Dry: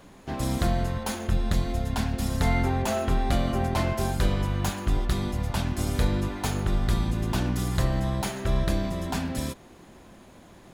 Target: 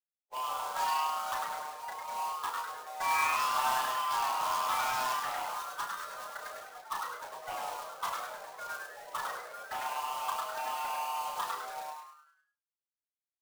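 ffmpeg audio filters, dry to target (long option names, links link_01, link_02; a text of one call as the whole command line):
ffmpeg -i in.wav -filter_complex "[0:a]afftfilt=real='re*gte(hypot(re,im),0.0708)':imag='im*gte(hypot(re,im),0.0708)':win_size=1024:overlap=0.75,asplit=2[link_01][link_02];[link_02]acompressor=threshold=-31dB:ratio=12,volume=0.5dB[link_03];[link_01][link_03]amix=inputs=2:normalize=0,highpass=frequency=540:width_type=q:width=0.5412,highpass=frequency=540:width_type=q:width=1.307,lowpass=frequency=2000:width_type=q:width=0.5176,lowpass=frequency=2000:width_type=q:width=0.7071,lowpass=frequency=2000:width_type=q:width=1.932,afreqshift=240,flanger=delay=9.9:depth=4.8:regen=84:speed=0.54:shape=sinusoidal,asoftclip=type=tanh:threshold=-34.5dB,atempo=0.8,acrusher=bits=2:mode=log:mix=0:aa=0.000001,asplit=2[link_04][link_05];[link_05]asplit=6[link_06][link_07][link_08][link_09][link_10][link_11];[link_06]adelay=102,afreqshift=150,volume=-3.5dB[link_12];[link_07]adelay=204,afreqshift=300,volume=-10.6dB[link_13];[link_08]adelay=306,afreqshift=450,volume=-17.8dB[link_14];[link_09]adelay=408,afreqshift=600,volume=-24.9dB[link_15];[link_10]adelay=510,afreqshift=750,volume=-32dB[link_16];[link_11]adelay=612,afreqshift=900,volume=-39.2dB[link_17];[link_12][link_13][link_14][link_15][link_16][link_17]amix=inputs=6:normalize=0[link_18];[link_04][link_18]amix=inputs=2:normalize=0,asplit=3[link_19][link_20][link_21];[link_20]asetrate=33038,aresample=44100,atempo=1.33484,volume=-15dB[link_22];[link_21]asetrate=37084,aresample=44100,atempo=1.18921,volume=-11dB[link_23];[link_19][link_22][link_23]amix=inputs=3:normalize=0,asplit=2[link_24][link_25];[link_25]adelay=33,volume=-5.5dB[link_26];[link_24][link_26]amix=inputs=2:normalize=0,adynamicequalizer=threshold=0.00355:dfrequency=1600:dqfactor=0.7:tfrequency=1600:tqfactor=0.7:attack=5:release=100:ratio=0.375:range=2:mode=boostabove:tftype=highshelf,volume=3dB" out.wav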